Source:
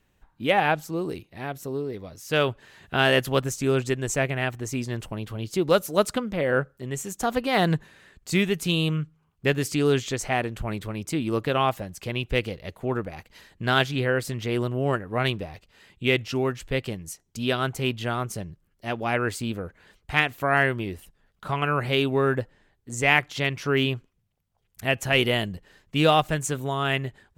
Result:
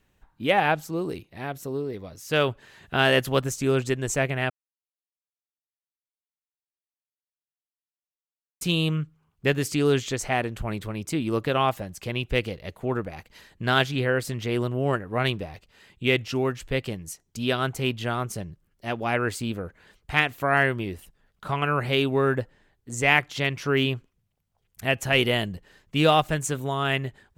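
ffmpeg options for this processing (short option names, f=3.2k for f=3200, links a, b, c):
-filter_complex "[0:a]asplit=3[a][b][c];[a]atrim=end=4.5,asetpts=PTS-STARTPTS,afade=t=out:st=4.496:d=0.004:c=hsin[d];[b]atrim=start=4.5:end=8.61,asetpts=PTS-STARTPTS,volume=0[e];[c]atrim=start=8.61,asetpts=PTS-STARTPTS,afade=t=in:d=0.004:c=hsin[f];[d][e][f]concat=n=3:v=0:a=1"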